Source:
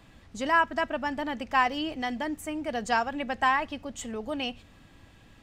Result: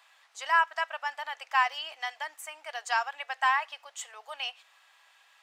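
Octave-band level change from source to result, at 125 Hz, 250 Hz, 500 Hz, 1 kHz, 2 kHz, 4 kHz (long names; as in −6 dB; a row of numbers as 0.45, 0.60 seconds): below −40 dB, below −40 dB, −10.5 dB, −1.5 dB, 0.0 dB, 0.0 dB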